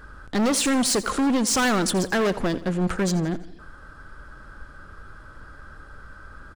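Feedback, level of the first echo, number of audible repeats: 50%, -16.5 dB, 4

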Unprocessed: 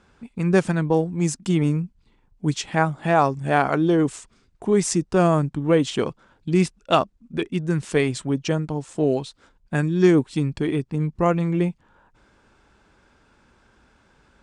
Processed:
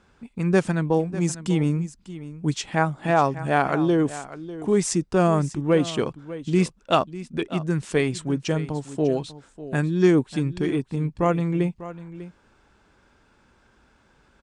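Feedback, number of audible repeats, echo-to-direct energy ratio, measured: no regular repeats, 1, -15.0 dB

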